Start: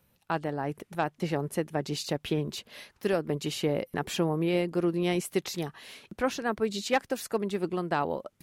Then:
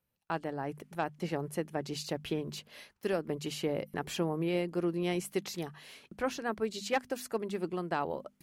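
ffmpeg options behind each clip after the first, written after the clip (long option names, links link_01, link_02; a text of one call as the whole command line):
ffmpeg -i in.wav -af "bandreject=frequency=3700:width=23,agate=range=-11dB:threshold=-54dB:ratio=16:detection=peak,bandreject=frequency=50:width_type=h:width=6,bandreject=frequency=100:width_type=h:width=6,bandreject=frequency=150:width_type=h:width=6,bandreject=frequency=200:width_type=h:width=6,bandreject=frequency=250:width_type=h:width=6,volume=-4.5dB" out.wav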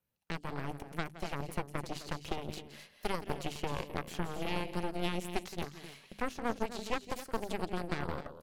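ffmpeg -i in.wav -filter_complex "[0:a]acrossover=split=760|2800[link_01][link_02][link_03];[link_01]acompressor=threshold=-35dB:ratio=4[link_04];[link_02]acompressor=threshold=-51dB:ratio=4[link_05];[link_03]acompressor=threshold=-50dB:ratio=4[link_06];[link_04][link_05][link_06]amix=inputs=3:normalize=0,aecho=1:1:169.1|259.5:0.282|0.316,aeval=exprs='0.0668*(cos(1*acos(clip(val(0)/0.0668,-1,1)))-cos(1*PI/2))+0.0075*(cos(3*acos(clip(val(0)/0.0668,-1,1)))-cos(3*PI/2))+0.0299*(cos(4*acos(clip(val(0)/0.0668,-1,1)))-cos(4*PI/2))':channel_layout=same,volume=1dB" out.wav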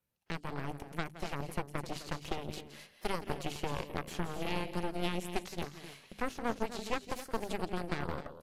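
ffmpeg -i in.wav -ar 32000 -c:a aac -b:a 64k out.aac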